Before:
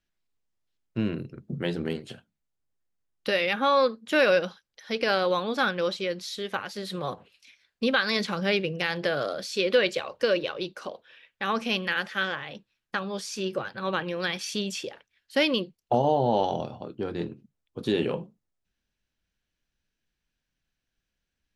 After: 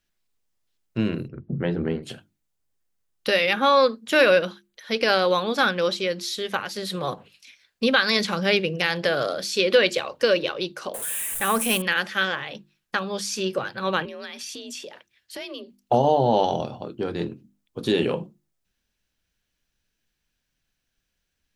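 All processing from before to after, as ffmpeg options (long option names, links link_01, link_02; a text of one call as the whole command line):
ffmpeg -i in.wav -filter_complex "[0:a]asettb=1/sr,asplit=3[link_01][link_02][link_03];[link_01]atrim=end=1.284[link_04];[link_02]atrim=start=1.28:end=2.03,asetpts=PTS-STARTPTS,afade=type=in:duration=0.004:curve=qsin,afade=type=out:start_time=0.746:duration=0.004:curve=qsin,lowpass=1800,lowshelf=frequency=84:gain=9.5[link_05];[link_03]atrim=start=2.026[link_06];[link_04][link_05]acrossfade=duration=0.004:curve1=hsin:curve2=qsin[link_07];[link_07][link_06]acrossfade=duration=0.004:curve1=qsin:curve2=hsin,asettb=1/sr,asplit=3[link_08][link_09][link_10];[link_08]atrim=end=4.224[link_11];[link_09]atrim=start=4.22:end=4.92,asetpts=PTS-STARTPTS,afade=type=in:duration=0.004:curve=qsin,afade=type=out:start_time=0.696:duration=0.004:curve=qsin,equalizer=frequency=5300:width_type=o:width=0.3:gain=-9.5,bandreject=frequency=790:width=9.8[link_12];[link_10]atrim=start=4.916[link_13];[link_11][link_12]acrossfade=duration=0.004:curve1=hsin:curve2=qsin[link_14];[link_14][link_13]acrossfade=duration=0.004:curve1=qsin:curve2=hsin,asettb=1/sr,asplit=3[link_15][link_16][link_17];[link_15]atrim=end=10.944[link_18];[link_16]atrim=start=10.94:end=11.82,asetpts=PTS-STARTPTS,afade=type=in:duration=0.004:curve=qsin,afade=type=out:start_time=0.876:duration=0.004:curve=qsin,aeval=exprs='val(0)+0.5*0.0112*sgn(val(0))':channel_layout=same,highshelf=frequency=7000:width_type=q:width=3:gain=13[link_19];[link_17]atrim=start=11.816[link_20];[link_18][link_19]acrossfade=duration=0.004:curve1=hsin:curve2=qsin[link_21];[link_21][link_20]acrossfade=duration=0.004:curve1=qsin:curve2=hsin,asettb=1/sr,asplit=3[link_22][link_23][link_24];[link_22]atrim=end=14.054[link_25];[link_23]atrim=start=14.05:end=15.77,asetpts=PTS-STARTPTS,afade=type=in:duration=0.004:curve=qsin,afade=type=out:start_time=1.716:duration=0.004:curve=qsin,acompressor=threshold=-40dB:ratio=4:attack=3.2:release=140:knee=1:detection=peak,afreqshift=46[link_26];[link_24]atrim=start=15.766[link_27];[link_25][link_26]acrossfade=duration=0.004:curve1=hsin:curve2=qsin[link_28];[link_28][link_27]acrossfade=duration=0.004:curve1=qsin:curve2=hsin,highshelf=frequency=5100:gain=5.5,bandreject=frequency=50:width_type=h:width=6,bandreject=frequency=100:width_type=h:width=6,bandreject=frequency=150:width_type=h:width=6,bandreject=frequency=200:width_type=h:width=6,bandreject=frequency=250:width_type=h:width=6,bandreject=frequency=300:width_type=h:width=6,bandreject=frequency=350:width_type=h:width=6,volume=4dB" out.wav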